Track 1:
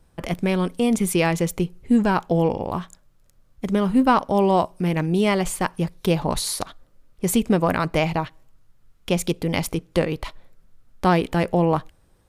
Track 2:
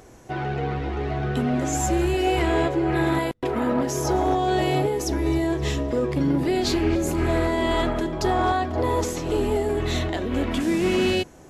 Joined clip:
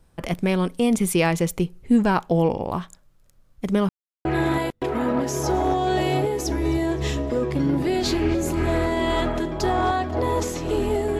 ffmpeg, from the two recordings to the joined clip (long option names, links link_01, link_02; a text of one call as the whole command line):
ffmpeg -i cue0.wav -i cue1.wav -filter_complex "[0:a]apad=whole_dur=11.19,atrim=end=11.19,asplit=2[link_01][link_02];[link_01]atrim=end=3.89,asetpts=PTS-STARTPTS,afade=type=out:start_time=3.886:duration=0.004:curve=hsin[link_03];[link_02]atrim=start=3.89:end=4.25,asetpts=PTS-STARTPTS,volume=0[link_04];[1:a]atrim=start=2.86:end=9.8,asetpts=PTS-STARTPTS,afade=type=in:duration=0.004:curve=hsin[link_05];[link_03][link_04][link_05]concat=n=3:v=0:a=1" out.wav